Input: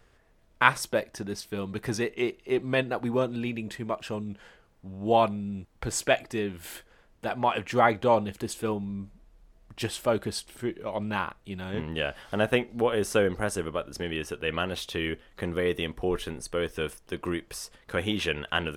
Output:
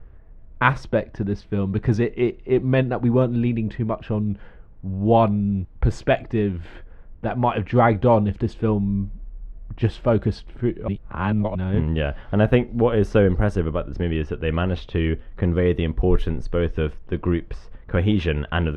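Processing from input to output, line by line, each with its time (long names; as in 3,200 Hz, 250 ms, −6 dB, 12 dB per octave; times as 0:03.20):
0:10.88–0:11.55: reverse
whole clip: RIAA equalisation playback; low-pass that shuts in the quiet parts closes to 1,900 Hz, open at −15.5 dBFS; dynamic equaliser 8,700 Hz, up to −6 dB, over −57 dBFS, Q 1.3; level +3 dB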